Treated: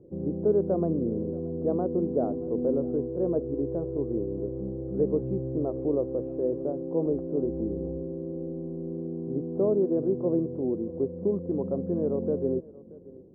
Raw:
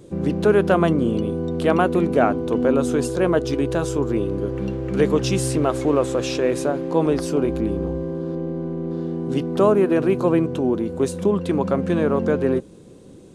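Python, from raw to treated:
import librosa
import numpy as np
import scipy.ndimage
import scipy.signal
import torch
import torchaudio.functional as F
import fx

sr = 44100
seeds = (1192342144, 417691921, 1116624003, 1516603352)

p1 = fx.ladder_lowpass(x, sr, hz=650.0, resonance_pct=30)
p2 = p1 + fx.echo_single(p1, sr, ms=629, db=-21.0, dry=0)
y = F.gain(torch.from_numpy(p2), -3.0).numpy()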